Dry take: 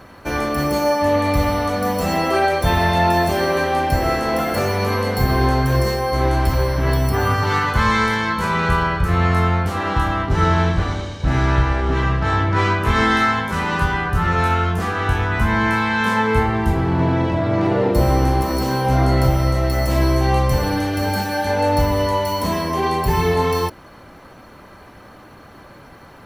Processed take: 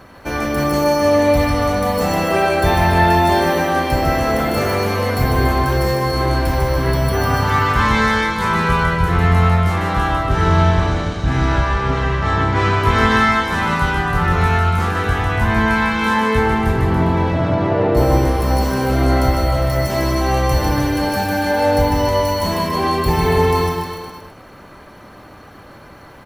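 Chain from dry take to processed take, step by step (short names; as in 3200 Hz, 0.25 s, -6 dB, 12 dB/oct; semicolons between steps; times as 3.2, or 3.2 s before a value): 17.54–17.97 LPF 2600 Hz 6 dB/oct; bouncing-ball echo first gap 0.15 s, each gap 0.9×, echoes 5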